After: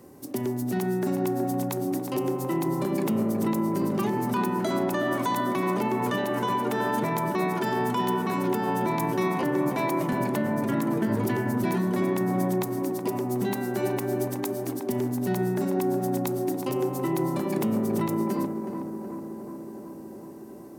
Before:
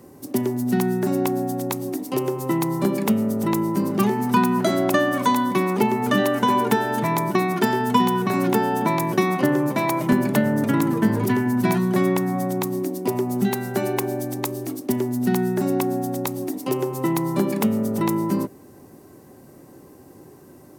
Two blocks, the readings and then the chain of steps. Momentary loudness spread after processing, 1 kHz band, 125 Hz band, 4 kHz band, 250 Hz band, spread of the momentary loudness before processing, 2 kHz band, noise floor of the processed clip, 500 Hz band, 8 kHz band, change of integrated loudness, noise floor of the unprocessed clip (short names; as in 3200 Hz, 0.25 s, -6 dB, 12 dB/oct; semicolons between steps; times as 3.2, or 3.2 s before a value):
6 LU, -5.0 dB, -4.5 dB, -7.0 dB, -5.0 dB, 6 LU, -6.0 dB, -41 dBFS, -4.0 dB, -6.0 dB, -5.0 dB, -47 dBFS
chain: notches 50/100/150/200/250 Hz; limiter -16 dBFS, peak gain reduction 10 dB; tape echo 0.37 s, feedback 88%, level -5 dB, low-pass 1400 Hz; gain -3 dB